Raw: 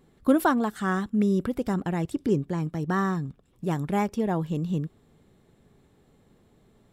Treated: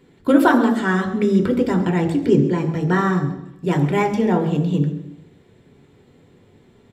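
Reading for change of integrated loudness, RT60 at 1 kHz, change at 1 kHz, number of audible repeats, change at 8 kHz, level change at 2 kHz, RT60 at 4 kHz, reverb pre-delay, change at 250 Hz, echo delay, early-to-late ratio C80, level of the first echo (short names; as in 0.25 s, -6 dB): +8.0 dB, 0.85 s, +7.0 dB, 1, n/a, +9.5 dB, 0.80 s, 3 ms, +8.0 dB, 0.135 s, 11.0 dB, -16.0 dB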